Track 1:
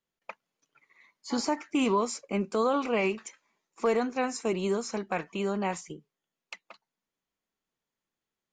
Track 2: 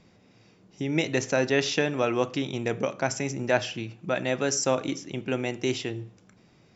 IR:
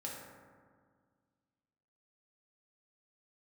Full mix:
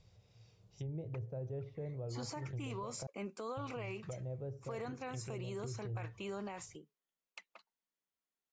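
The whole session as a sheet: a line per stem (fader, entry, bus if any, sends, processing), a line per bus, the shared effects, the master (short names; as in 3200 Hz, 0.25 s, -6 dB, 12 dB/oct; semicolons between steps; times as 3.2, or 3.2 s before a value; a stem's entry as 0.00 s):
-8.5 dB, 0.85 s, no send, low shelf 250 Hz -6.5 dB
+2.0 dB, 0.00 s, muted 3.07–3.57, no send, treble ducked by the level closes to 400 Hz, closed at -25.5 dBFS; EQ curve 110 Hz 0 dB, 260 Hz -28 dB, 470 Hz -12 dB, 1900 Hz -18 dB, 3600 Hz -9 dB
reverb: off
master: limiter -34.5 dBFS, peak gain reduction 11 dB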